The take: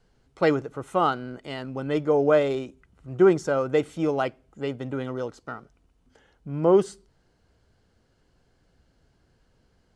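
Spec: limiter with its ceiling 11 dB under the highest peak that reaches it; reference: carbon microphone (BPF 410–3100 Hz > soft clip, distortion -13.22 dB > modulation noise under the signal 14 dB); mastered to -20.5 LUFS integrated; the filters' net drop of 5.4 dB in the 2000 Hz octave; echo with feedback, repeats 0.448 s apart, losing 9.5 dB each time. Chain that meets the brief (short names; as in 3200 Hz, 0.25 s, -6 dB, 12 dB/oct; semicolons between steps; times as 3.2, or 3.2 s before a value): bell 2000 Hz -7 dB; limiter -19 dBFS; BPF 410–3100 Hz; feedback echo 0.448 s, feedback 33%, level -9.5 dB; soft clip -27.5 dBFS; modulation noise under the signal 14 dB; gain +15.5 dB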